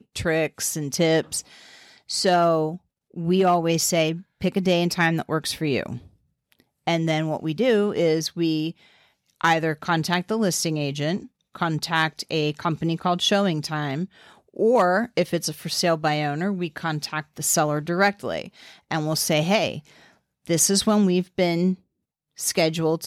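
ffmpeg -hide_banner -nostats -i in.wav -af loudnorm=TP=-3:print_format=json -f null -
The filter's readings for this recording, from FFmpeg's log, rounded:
"input_i" : "-22.9",
"input_tp" : "-7.2",
"input_lra" : "2.3",
"input_thresh" : "-33.5",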